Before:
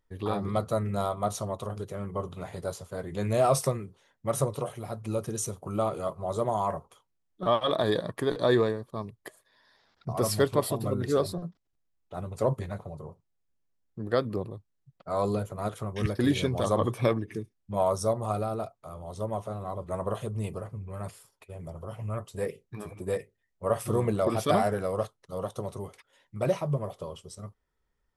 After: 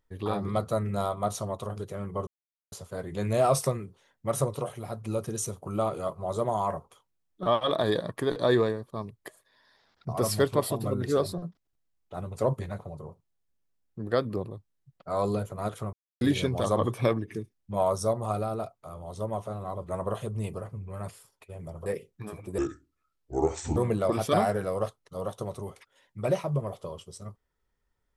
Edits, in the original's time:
0:02.27–0:02.72: silence
0:15.93–0:16.21: silence
0:21.86–0:22.39: remove
0:23.11–0:23.94: play speed 70%

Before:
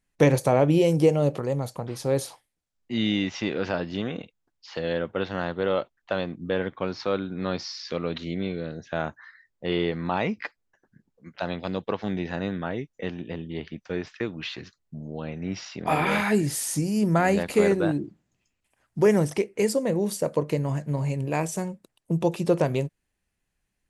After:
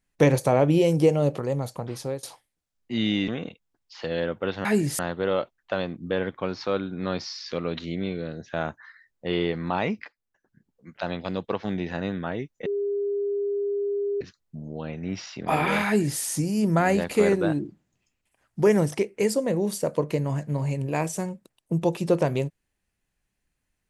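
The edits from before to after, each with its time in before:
0:01.97–0:02.23: fade out, to −24 dB
0:03.28–0:04.01: remove
0:10.44–0:11.35: fade in, from −12.5 dB
0:13.05–0:14.60: beep over 404 Hz −23.5 dBFS
0:16.25–0:16.59: duplicate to 0:05.38

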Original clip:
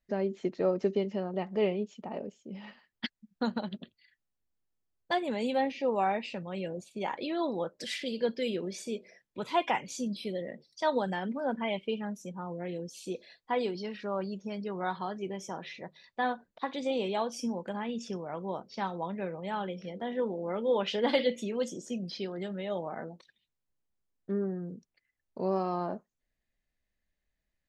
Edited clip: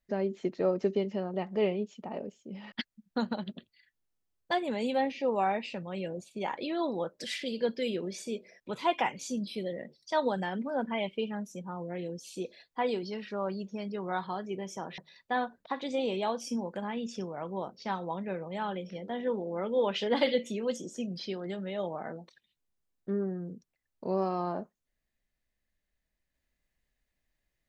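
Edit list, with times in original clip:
compress silence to 70%

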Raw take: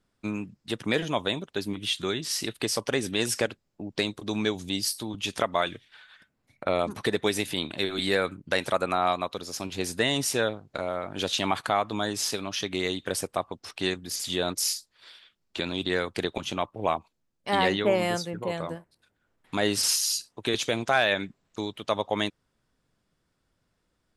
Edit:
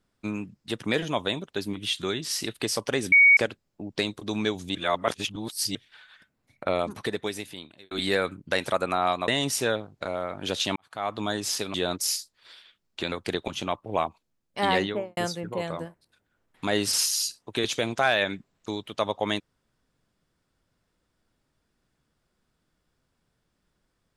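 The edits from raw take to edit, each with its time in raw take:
0:03.12–0:03.37: beep over 2,240 Hz −12 dBFS
0:04.75–0:05.75: reverse
0:06.70–0:07.91: fade out
0:09.28–0:10.01: remove
0:11.49–0:11.87: fade in quadratic
0:12.47–0:14.31: remove
0:15.69–0:16.02: remove
0:17.68–0:18.07: fade out and dull

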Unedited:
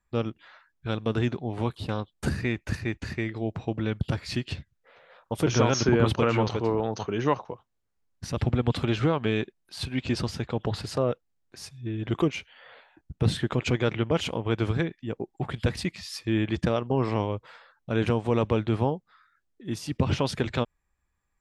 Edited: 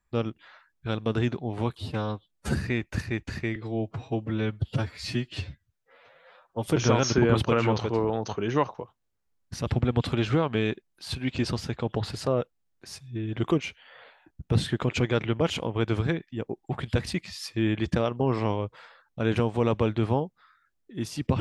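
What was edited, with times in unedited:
0:01.78–0:02.29: time-stretch 1.5×
0:03.30–0:05.38: time-stretch 1.5×

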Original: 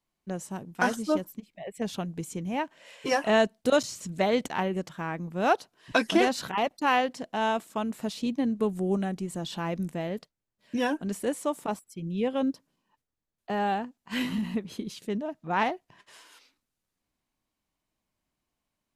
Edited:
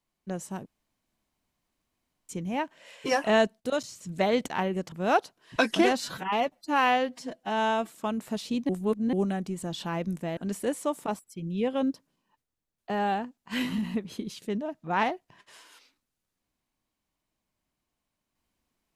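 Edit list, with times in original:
0:00.66–0:02.29: fill with room tone
0:03.60–0:04.07: clip gain −6 dB
0:04.92–0:05.28: remove
0:06.36–0:07.64: time-stretch 1.5×
0:08.41–0:08.85: reverse
0:10.09–0:10.97: remove

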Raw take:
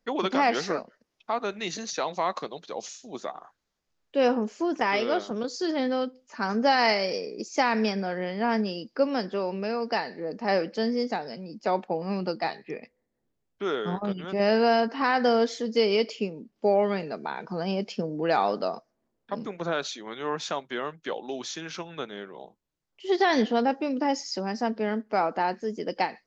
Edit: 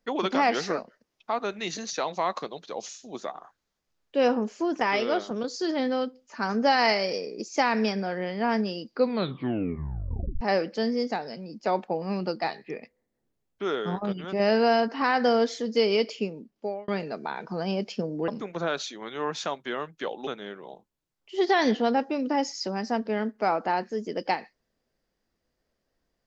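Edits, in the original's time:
0:08.90: tape stop 1.51 s
0:16.34–0:16.88: fade out
0:18.28–0:19.33: remove
0:21.32–0:21.98: remove

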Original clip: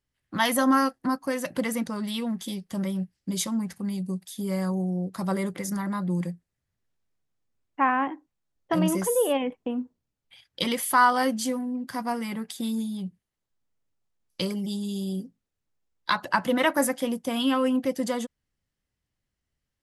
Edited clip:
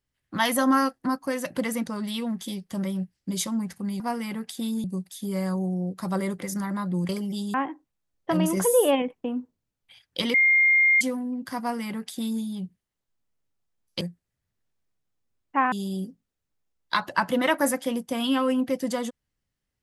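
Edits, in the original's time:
0:06.25–0:07.96: swap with 0:14.43–0:14.88
0:08.99–0:09.44: clip gain +3.5 dB
0:10.76–0:11.43: beep over 2,120 Hz −15.5 dBFS
0:12.01–0:12.85: duplicate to 0:04.00

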